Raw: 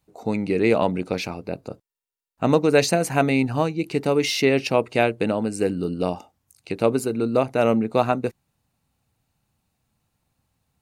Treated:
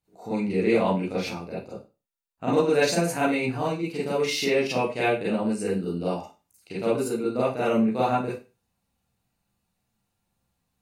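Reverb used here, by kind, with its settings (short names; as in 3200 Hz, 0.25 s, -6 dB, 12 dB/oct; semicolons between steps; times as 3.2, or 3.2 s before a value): Schroeder reverb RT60 0.3 s, combs from 32 ms, DRR -9 dB; gain -12.5 dB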